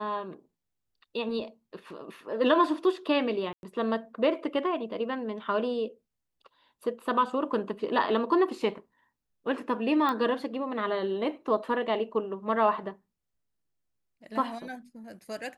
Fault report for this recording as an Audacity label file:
3.530000	3.630000	dropout 101 ms
10.090000	10.090000	pop -17 dBFS

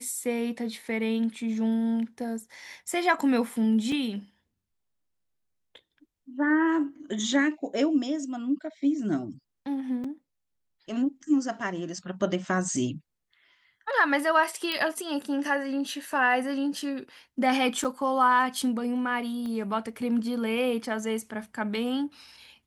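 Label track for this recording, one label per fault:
3.920000	3.920000	dropout 2.7 ms
10.040000	10.040000	dropout 4.3 ms
14.720000	14.720000	pop -15 dBFS
17.840000	17.850000	dropout 6.6 ms
19.460000	19.460000	pop -26 dBFS

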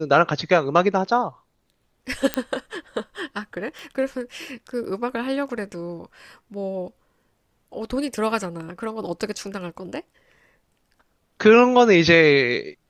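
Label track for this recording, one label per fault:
2.340000	2.340000	pop -6 dBFS
3.790000	3.790000	pop

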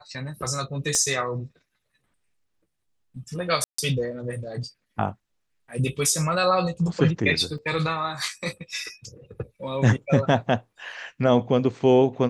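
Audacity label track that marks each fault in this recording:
0.950000	0.950000	pop -12 dBFS
3.640000	3.780000	dropout 144 ms
7.580000	7.580000	dropout 3.2 ms

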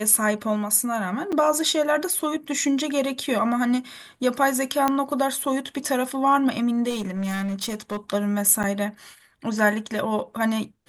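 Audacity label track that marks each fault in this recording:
1.320000	1.330000	dropout 5.9 ms
4.880000	4.880000	pop -8 dBFS
6.890000	7.970000	clipped -24 dBFS
8.630000	8.640000	dropout 7.7 ms

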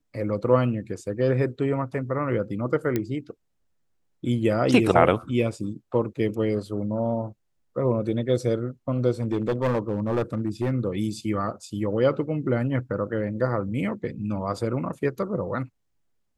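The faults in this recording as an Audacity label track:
2.960000	2.960000	pop -12 dBFS
9.220000	10.720000	clipped -19.5 dBFS

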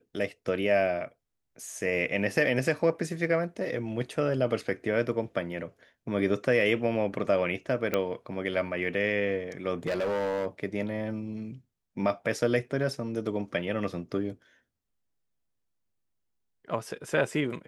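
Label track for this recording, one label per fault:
7.940000	7.940000	pop -13 dBFS
9.860000	10.460000	clipped -25.5 dBFS

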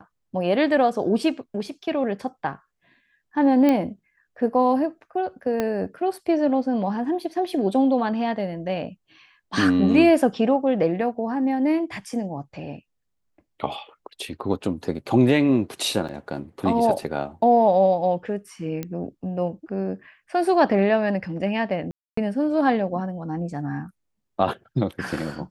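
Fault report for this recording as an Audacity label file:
3.690000	3.690000	pop -10 dBFS
5.600000	5.600000	pop -11 dBFS
16.080000	16.090000	dropout 7 ms
18.830000	18.830000	pop -16 dBFS
21.910000	22.170000	dropout 264 ms

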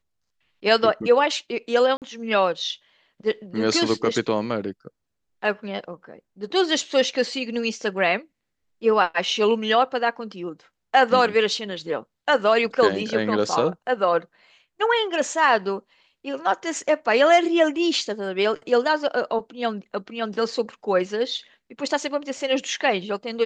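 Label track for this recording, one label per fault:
1.970000	2.020000	dropout 48 ms

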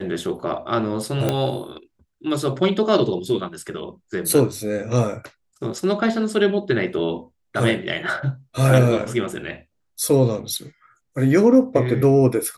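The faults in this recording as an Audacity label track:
1.290000	1.290000	pop -7 dBFS

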